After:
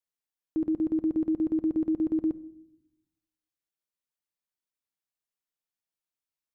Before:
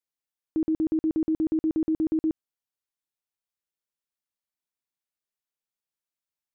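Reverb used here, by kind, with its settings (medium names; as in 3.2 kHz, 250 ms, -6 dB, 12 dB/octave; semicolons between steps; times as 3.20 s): simulated room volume 1900 m³, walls furnished, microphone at 0.51 m; trim -3 dB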